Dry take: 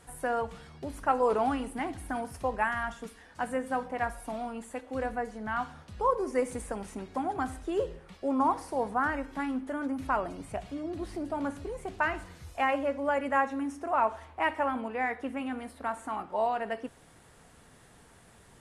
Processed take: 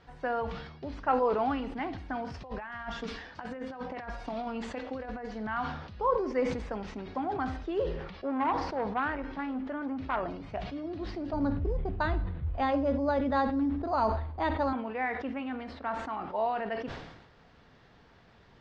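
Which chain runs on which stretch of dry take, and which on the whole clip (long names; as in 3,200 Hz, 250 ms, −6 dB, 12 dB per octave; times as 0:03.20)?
0:02.30–0:05.47: compressor whose output falls as the input rises −36 dBFS, ratio −0.5 + high-shelf EQ 4,600 Hz +6 dB
0:08.10–0:10.53: high-shelf EQ 7,900 Hz −11 dB + saturating transformer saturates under 800 Hz
0:11.33–0:14.73: RIAA equalisation playback + linearly interpolated sample-rate reduction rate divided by 8×
whole clip: Butterworth low-pass 5,100 Hz 36 dB per octave; level that may fall only so fast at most 54 dB per second; level −1.5 dB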